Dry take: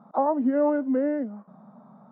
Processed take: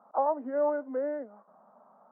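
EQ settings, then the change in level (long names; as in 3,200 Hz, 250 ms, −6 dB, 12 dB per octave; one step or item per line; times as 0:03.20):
flat-topped band-pass 860 Hz, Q 0.69
−3.0 dB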